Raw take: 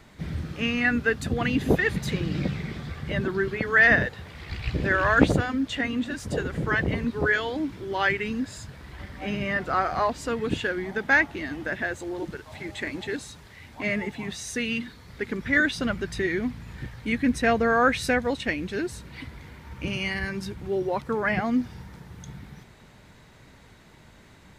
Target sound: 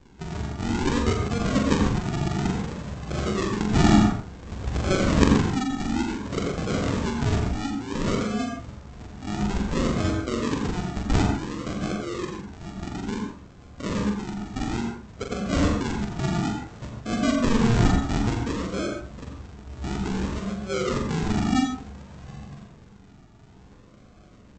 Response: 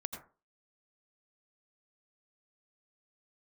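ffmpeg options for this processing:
-filter_complex "[0:a]aresample=16000,acrusher=samples=24:mix=1:aa=0.000001:lfo=1:lforange=14.4:lforate=0.57,aresample=44100,asplit=2[a][b];[b]adelay=43,volume=-5dB[c];[a][c]amix=inputs=2:normalize=0[d];[1:a]atrim=start_sample=2205[e];[d][e]afir=irnorm=-1:irlink=0"

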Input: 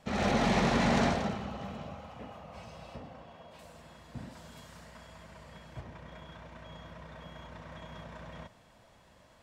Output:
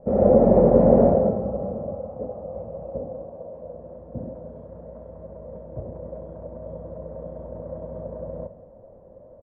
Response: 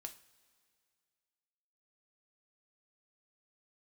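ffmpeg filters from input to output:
-filter_complex "[0:a]lowpass=f=530:t=q:w=6.4,lowshelf=f=190:g=4.5,asplit=2[a][b];[b]adelay=169.1,volume=-17dB,highshelf=f=4k:g=-3.8[c];[a][c]amix=inputs=2:normalize=0,asplit=2[d][e];[1:a]atrim=start_sample=2205,lowpass=1.9k[f];[e][f]afir=irnorm=-1:irlink=0,volume=7dB[g];[d][g]amix=inputs=2:normalize=0,volume=-1dB"

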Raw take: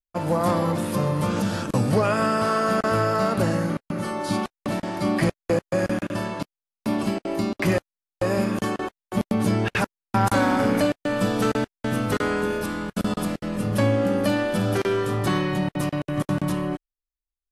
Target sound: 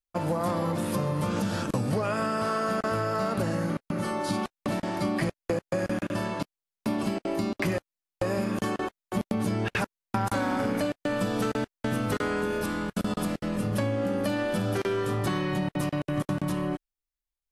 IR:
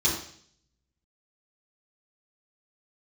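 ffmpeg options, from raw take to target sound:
-af "acompressor=threshold=-23dB:ratio=6,volume=-1dB"

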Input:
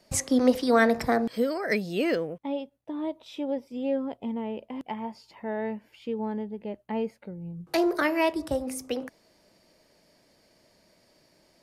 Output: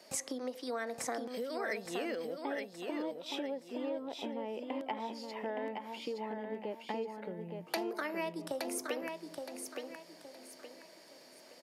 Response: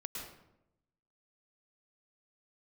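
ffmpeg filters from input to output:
-af "acompressor=threshold=-38dB:ratio=16,highpass=330,aecho=1:1:869|1738|2607|3476:0.562|0.186|0.0612|0.0202,volume=5dB"

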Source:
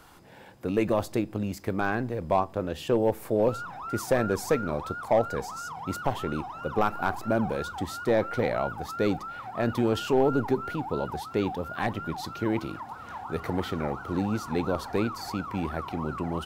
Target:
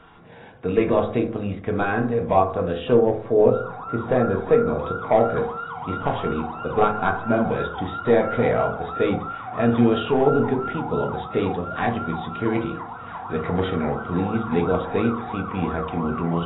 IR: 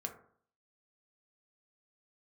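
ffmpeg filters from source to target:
-filter_complex "[0:a]asettb=1/sr,asplit=3[a][b][c];[a]atrim=end=2.954[d];[b]atrim=start=2.95:end=4.79,asetpts=PTS-STARTPTS,afade=t=in:d=0.004:c=qsin,afade=t=out:st=1.836:d=0.004:c=qsin,equalizer=f=2.8k:t=o:w=1.9:g=-6.5[e];[c]atrim=start=4.786[f];[d][e]acrossfade=d=0.004:c1=hsin:c2=qsin[g];[g][f]acrossfade=d=0.004:c1=qsin:c2=hsin[h];[1:a]atrim=start_sample=2205[i];[h][i]afir=irnorm=-1:irlink=0,volume=6dB" -ar 16000 -c:a aac -b:a 16k

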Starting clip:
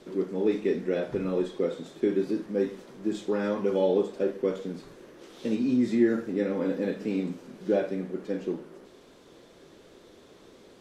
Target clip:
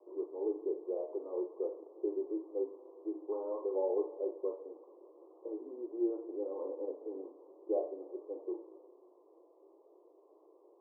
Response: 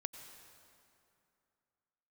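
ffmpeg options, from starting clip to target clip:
-filter_complex "[0:a]asplit=2[a][b];[1:a]atrim=start_sample=2205,asetrate=48510,aresample=44100[c];[b][c]afir=irnorm=-1:irlink=0,volume=-3dB[d];[a][d]amix=inputs=2:normalize=0,flanger=delay=8.3:depth=4.8:regen=84:speed=0.47:shape=triangular,asuperpass=centerf=590:order=20:qfactor=0.74,volume=-7dB"

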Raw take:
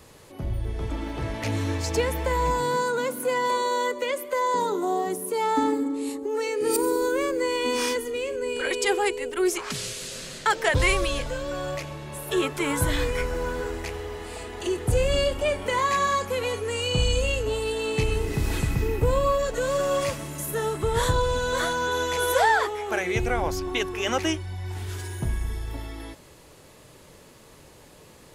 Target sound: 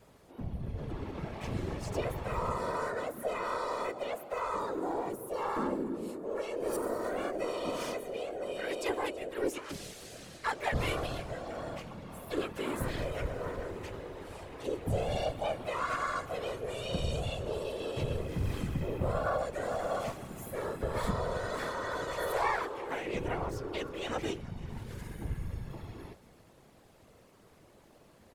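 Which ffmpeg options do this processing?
-filter_complex "[0:a]highshelf=f=2.1k:g=-7.5,asplit=5[a][b][c][d][e];[b]adelay=326,afreqshift=33,volume=-22dB[f];[c]adelay=652,afreqshift=66,volume=-27.8dB[g];[d]adelay=978,afreqshift=99,volume=-33.7dB[h];[e]adelay=1304,afreqshift=132,volume=-39.5dB[i];[a][f][g][h][i]amix=inputs=5:normalize=0,asplit=2[j][k];[k]aeval=exprs='clip(val(0),-1,0.0376)':c=same,volume=-7dB[l];[j][l]amix=inputs=2:normalize=0,asplit=3[m][n][o];[n]asetrate=55563,aresample=44100,atempo=0.793701,volume=-3dB[p];[o]asetrate=66075,aresample=44100,atempo=0.66742,volume=-17dB[q];[m][p][q]amix=inputs=3:normalize=0,afftfilt=real='hypot(re,im)*cos(2*PI*random(0))':imag='hypot(re,im)*sin(2*PI*random(1))':win_size=512:overlap=0.75,volume=-7dB"

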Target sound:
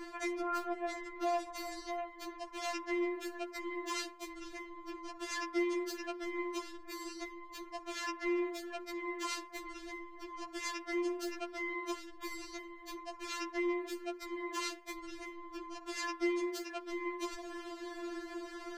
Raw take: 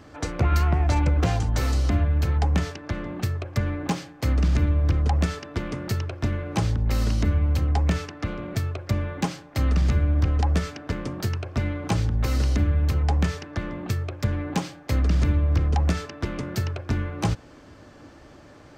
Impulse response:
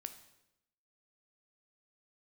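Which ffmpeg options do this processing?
-af "alimiter=limit=-15dB:level=0:latency=1:release=108,areverse,acompressor=threshold=-34dB:ratio=16,areverse,afftfilt=real='re*4*eq(mod(b,16),0)':imag='im*4*eq(mod(b,16),0)':win_size=2048:overlap=0.75,volume=7dB"

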